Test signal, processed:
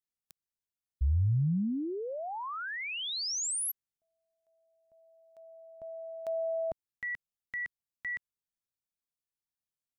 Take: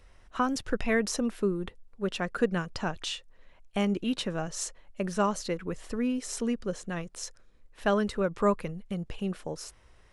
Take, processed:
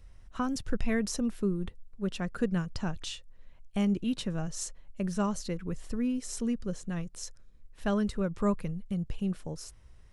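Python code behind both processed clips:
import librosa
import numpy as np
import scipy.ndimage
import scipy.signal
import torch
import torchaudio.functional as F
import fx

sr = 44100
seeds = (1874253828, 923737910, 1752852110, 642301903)

y = fx.bass_treble(x, sr, bass_db=12, treble_db=5)
y = y * librosa.db_to_amplitude(-7.0)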